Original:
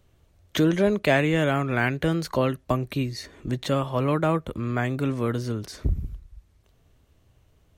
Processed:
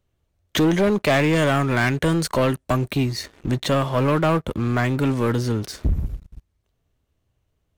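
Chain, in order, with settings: 1.33–2.9 bell 8500 Hz +8 dB 0.51 oct; sample leveller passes 3; gain -4.5 dB

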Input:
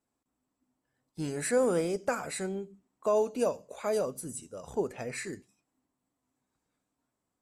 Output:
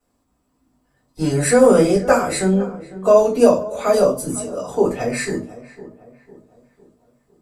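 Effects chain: 4.43–4.85 HPF 180 Hz 12 dB/oct; darkening echo 0.503 s, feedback 46%, low-pass 1700 Hz, level -16.5 dB; reverb RT60 0.30 s, pre-delay 3 ms, DRR -8 dB; gain +2.5 dB

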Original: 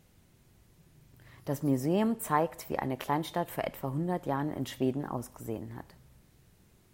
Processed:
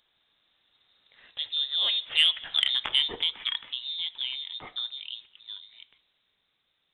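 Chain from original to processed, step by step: Doppler pass-by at 2.58, 23 m/s, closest 9.3 m; HPF 300 Hz 12 dB/oct; in parallel at +1 dB: compressor, threshold -45 dBFS, peak gain reduction 19 dB; on the sum: inverted band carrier 3900 Hz; soft clip -15.5 dBFS, distortion -23 dB; gain +8 dB

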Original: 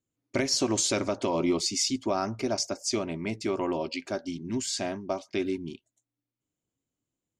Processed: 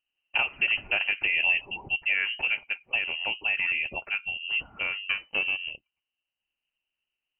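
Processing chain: 5.09–5.71 minimum comb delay 0.35 ms; inverted band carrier 3000 Hz; gain +1.5 dB

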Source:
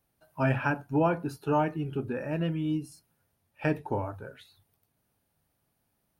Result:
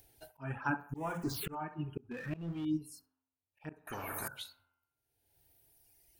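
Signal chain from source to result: 0.94–1.55 zero-crossing step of -30 dBFS; expander -51 dBFS; envelope phaser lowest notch 200 Hz, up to 4400 Hz, full sweep at -23 dBFS; de-hum 87.04 Hz, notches 35; on a send: narrowing echo 66 ms, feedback 47%, band-pass 950 Hz, level -6 dB; on the sum: reverb removal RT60 1.5 s; upward compressor, threshold -36 dBFS; bell 560 Hz -8.5 dB 0.36 oct; auto swell 0.69 s; 2.11–2.65 power-law curve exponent 0.7; bell 1200 Hz +3.5 dB 0.5 oct; 3.87–4.28 spectral compressor 10:1; gain +3.5 dB

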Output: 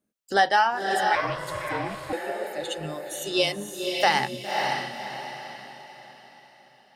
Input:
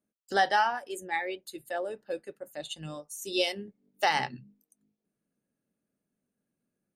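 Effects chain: diffused feedback echo 0.557 s, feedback 41%, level -3.5 dB; 1.15–2.13 ring modulator 240 Hz; gain +4.5 dB

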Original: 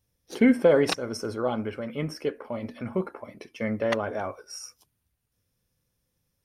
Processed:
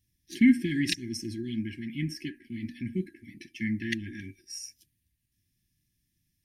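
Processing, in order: brick-wall FIR band-stop 370–1600 Hz

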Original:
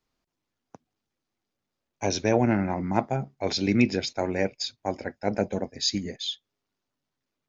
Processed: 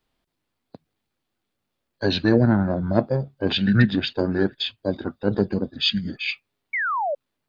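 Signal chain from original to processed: formant shift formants -6 st; painted sound fall, 6.73–7.15, 540–2300 Hz -29 dBFS; gain +5 dB

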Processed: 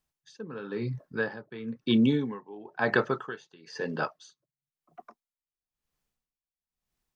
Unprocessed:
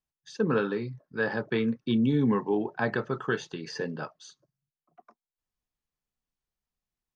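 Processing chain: 1.85–4.19 low shelf 250 Hz -9.5 dB; dB-linear tremolo 1 Hz, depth 23 dB; gain +8 dB

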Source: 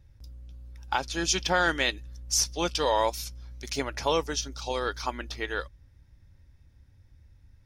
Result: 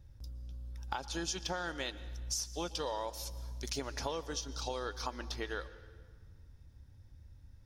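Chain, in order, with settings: bell 2200 Hz -6.5 dB 0.65 oct; compressor 6:1, threshold -35 dBFS, peak gain reduction 14.5 dB; reverb RT60 1.7 s, pre-delay 0.11 s, DRR 15 dB

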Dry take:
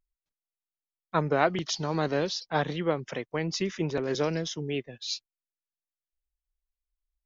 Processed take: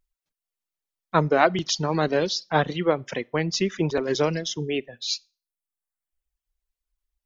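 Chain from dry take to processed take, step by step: Schroeder reverb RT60 0.35 s, combs from 26 ms, DRR 16 dB; reverb removal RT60 0.9 s; gain +6 dB

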